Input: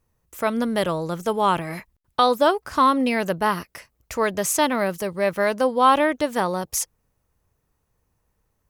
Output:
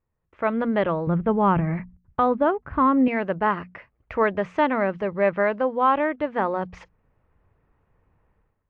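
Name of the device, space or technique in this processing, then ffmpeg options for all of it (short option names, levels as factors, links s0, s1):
action camera in a waterproof case: -filter_complex "[0:a]bandreject=f=60:t=h:w=6,bandreject=f=120:t=h:w=6,bandreject=f=180:t=h:w=6,bandreject=f=240:t=h:w=6,asettb=1/sr,asplit=3[s0][s1][s2];[s0]atrim=end=1.074[s3];[s1]atrim=start=1.07:end=3.08,asetpts=PTS-STARTPTS,afade=t=in:d=0.004:c=qsin,afade=t=out:st=2.006:d=0.004:c=qsin,bass=f=250:g=14,treble=f=4000:g=-15[s4];[s2]atrim=start=3.076[s5];[s3][s4]acrossfade=d=0.004:c1=hsin:c2=qsin[s6];[s6][s5]acrossfade=d=0.004:c1=qsin:c2=hsin,lowpass=f=2400:w=0.5412,lowpass=f=2400:w=1.3066,dynaudnorm=f=150:g=5:m=5.96,volume=0.376" -ar 24000 -c:a aac -b:a 96k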